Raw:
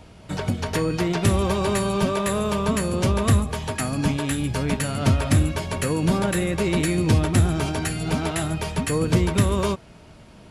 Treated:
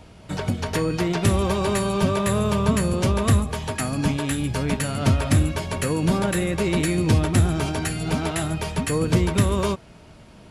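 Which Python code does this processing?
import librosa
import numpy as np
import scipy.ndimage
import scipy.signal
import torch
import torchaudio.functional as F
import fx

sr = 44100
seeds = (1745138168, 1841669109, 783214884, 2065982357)

y = fx.peak_eq(x, sr, hz=110.0, db=11.0, octaves=0.88, at=(2.04, 2.93))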